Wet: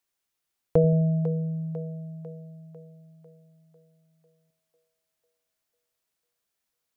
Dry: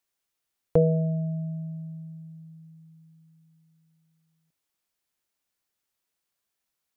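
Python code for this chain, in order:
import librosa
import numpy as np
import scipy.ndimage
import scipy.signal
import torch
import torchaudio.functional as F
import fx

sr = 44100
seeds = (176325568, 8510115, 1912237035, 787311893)

y = fx.echo_split(x, sr, split_hz=360.0, low_ms=86, high_ms=498, feedback_pct=52, wet_db=-11)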